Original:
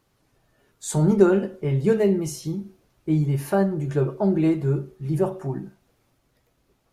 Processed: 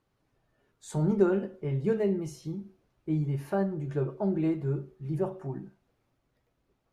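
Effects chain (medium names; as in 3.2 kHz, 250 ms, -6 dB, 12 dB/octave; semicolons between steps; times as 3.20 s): treble shelf 5.1 kHz -11 dB; trim -7.5 dB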